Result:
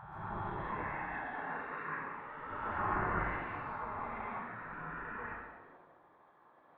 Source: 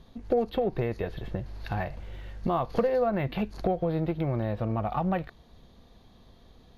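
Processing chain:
peak hold with a rise ahead of every peak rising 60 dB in 1.68 s
0:04.01–0:04.62: high-pass filter 150 Hz → 350 Hz 24 dB per octave
downward expander −47 dBFS
low-pass filter 1,600 Hz 24 dB per octave
gate on every frequency bin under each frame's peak −20 dB weak
downward compressor 1.5 to 1, threshold −48 dBFS, peak gain reduction 5.5 dB
sample-and-hold tremolo
dense smooth reverb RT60 1.2 s, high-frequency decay 0.85×, pre-delay 115 ms, DRR −6.5 dB
level +2.5 dB

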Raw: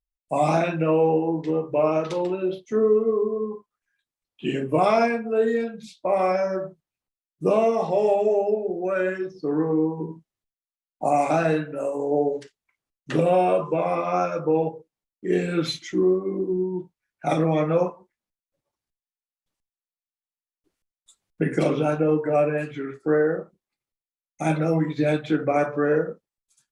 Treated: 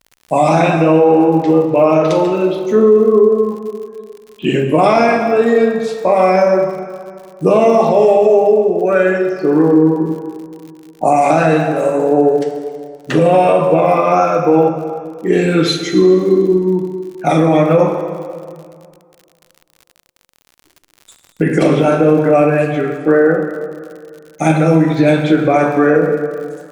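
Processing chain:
dense smooth reverb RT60 2.1 s, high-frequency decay 0.75×, DRR 5 dB
surface crackle 73 per second −41 dBFS
boost into a limiter +12 dB
level −1 dB

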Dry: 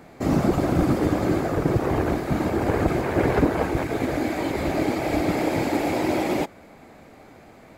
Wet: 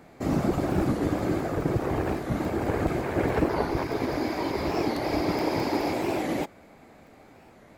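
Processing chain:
0:03.50–0:05.93: thirty-one-band graphic EQ 400 Hz +4 dB, 1,000 Hz +8 dB, 5,000 Hz +11 dB, 8,000 Hz −8 dB
regular buffer underruns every 0.21 s, samples 64, zero, from 0:00.98
wow of a warped record 45 rpm, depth 160 cents
level −4.5 dB

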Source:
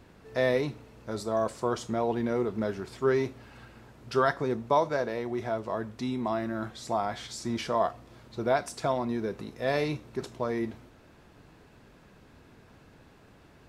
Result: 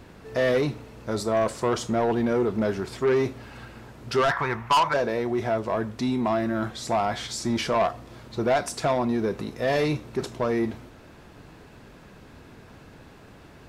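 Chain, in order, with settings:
0:04.31–0:04.94: graphic EQ with 10 bands 250 Hz −10 dB, 500 Hz −9 dB, 1,000 Hz +11 dB, 2,000 Hz +11 dB, 4,000 Hz −5 dB, 8,000 Hz −6 dB
soft clipping −24 dBFS, distortion −8 dB
level +7.5 dB

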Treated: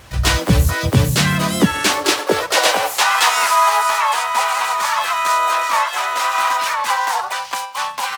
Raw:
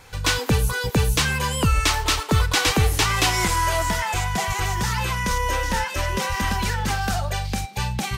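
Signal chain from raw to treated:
pitch-shifted copies added −7 semitones −1 dB, +4 semitones 0 dB, +7 semitones −13 dB
high-pass filter sweep 64 Hz → 950 Hz, 0:00.42–0:03.14

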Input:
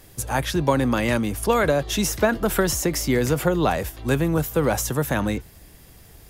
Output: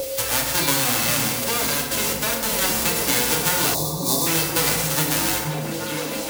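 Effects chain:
spectral envelope flattened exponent 0.1
echo through a band-pass that steps 468 ms, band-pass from 170 Hz, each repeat 0.7 octaves, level −1 dB
steady tone 540 Hz −25 dBFS
0:01.44–0:02.62: output level in coarse steps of 12 dB
feedback delay network reverb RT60 0.9 s, low-frequency decay 1.05×, high-frequency decay 0.65×, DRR −2 dB
0:03.75–0:04.27: gain on a spectral selection 1,200–3,400 Hz −21 dB
multiband upward and downward compressor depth 70%
level −3.5 dB

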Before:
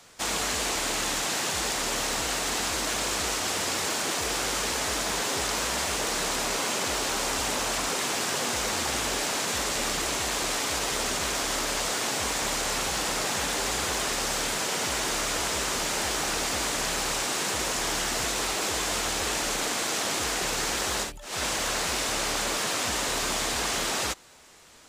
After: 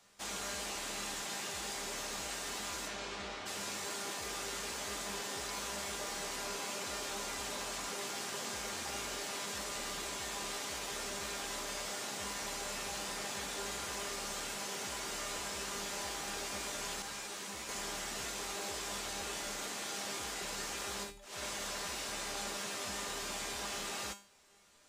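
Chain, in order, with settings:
0:02.87–0:03.45: low-pass filter 5,600 Hz → 3,200 Hz 12 dB per octave
tuned comb filter 200 Hz, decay 0.37 s, harmonics all, mix 80%
0:17.02–0:17.69: string-ensemble chorus
level −2 dB

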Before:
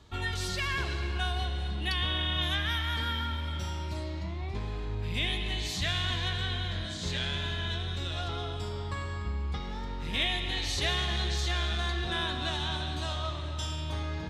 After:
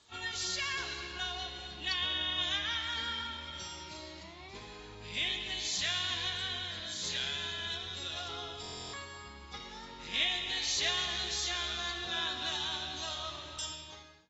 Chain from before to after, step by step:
fade-out on the ending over 0.72 s
RIAA equalisation recording
buffer that repeats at 0:08.61, samples 1,024, times 13
level −6.5 dB
AAC 24 kbit/s 24,000 Hz

